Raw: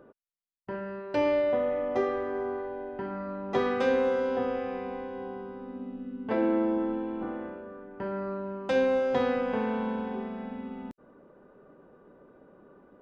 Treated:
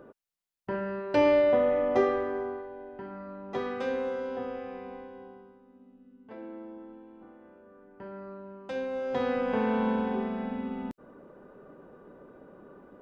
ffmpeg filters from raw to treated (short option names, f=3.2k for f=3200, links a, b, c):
-af "volume=24.5dB,afade=t=out:st=2.02:d=0.64:silence=0.334965,afade=t=out:st=4.94:d=0.68:silence=0.281838,afade=t=in:st=7.4:d=0.47:silence=0.398107,afade=t=in:st=8.91:d=0.98:silence=0.223872"